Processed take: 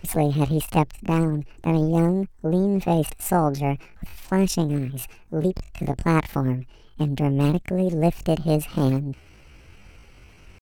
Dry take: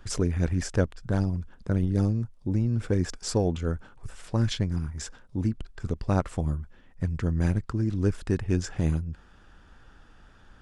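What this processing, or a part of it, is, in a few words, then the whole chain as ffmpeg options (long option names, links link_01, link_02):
chipmunk voice: -af "asetrate=74167,aresample=44100,atempo=0.594604,volume=4.5dB"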